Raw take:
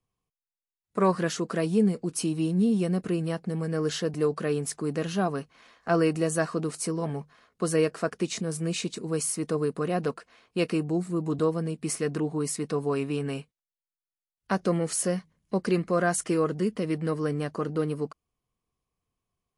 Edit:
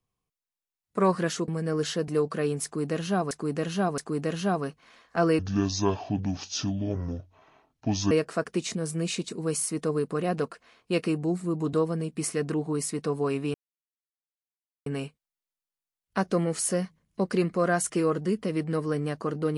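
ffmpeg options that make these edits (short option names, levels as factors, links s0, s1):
-filter_complex "[0:a]asplit=7[s0][s1][s2][s3][s4][s5][s6];[s0]atrim=end=1.482[s7];[s1]atrim=start=3.538:end=5.372[s8];[s2]atrim=start=4.698:end=5.372[s9];[s3]atrim=start=4.698:end=6.114[s10];[s4]atrim=start=6.11:end=7.77,asetpts=PTS-STARTPTS,asetrate=26901,aresample=44100[s11];[s5]atrim=start=7.766:end=13.2,asetpts=PTS-STARTPTS,afade=t=out:st=5.43:d=0.004:c=hsin,apad=pad_dur=1.32[s12];[s6]atrim=start=13.2,asetpts=PTS-STARTPTS,afade=t=in:d=0.004:c=hsin[s13];[s7][s8]acrossfade=d=0.004:c1=hsin:c2=hsin[s14];[s14][s9]acrossfade=d=0.004:c1=hsin:c2=hsin[s15];[s15][s10]acrossfade=d=0.004:c1=hsin:c2=hsin[s16];[s16][s11]acrossfade=d=0.004:c1=hsin:c2=hsin[s17];[s12][s13]concat=n=2:v=0:a=1[s18];[s17][s18]acrossfade=d=0.004:c1=hsin:c2=hsin"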